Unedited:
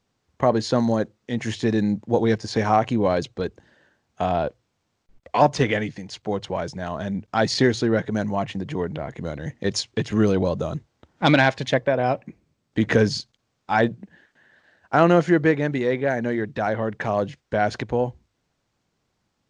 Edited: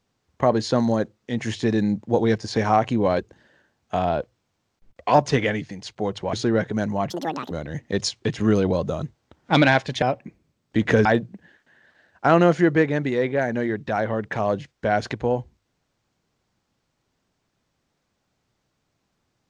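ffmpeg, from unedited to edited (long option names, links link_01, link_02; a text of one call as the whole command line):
ffmpeg -i in.wav -filter_complex "[0:a]asplit=7[link_01][link_02][link_03][link_04][link_05][link_06][link_07];[link_01]atrim=end=3.192[link_08];[link_02]atrim=start=3.458:end=6.602[link_09];[link_03]atrim=start=7.708:end=8.484[link_10];[link_04]atrim=start=8.48:end=9.23,asetpts=PTS-STARTPTS,asetrate=80262,aresample=44100,atrim=end_sample=18173,asetpts=PTS-STARTPTS[link_11];[link_05]atrim=start=9.226:end=11.742[link_12];[link_06]atrim=start=12.038:end=13.072[link_13];[link_07]atrim=start=13.738[link_14];[link_08][link_09]acrossfade=duration=0.004:curve1=hsin:curve2=hsin[link_15];[link_15][link_10]acrossfade=duration=0.004:curve1=hsin:curve2=hsin[link_16];[link_16][link_11]acrossfade=duration=0.004:curve1=hsin:curve2=hsin[link_17];[link_17][link_12]acrossfade=duration=0.004:curve1=hsin:curve2=hsin[link_18];[link_18][link_13]acrossfade=duration=0.004:curve1=hsin:curve2=hsin[link_19];[link_19][link_14]acrossfade=duration=0.004:curve1=hsin:curve2=hsin" out.wav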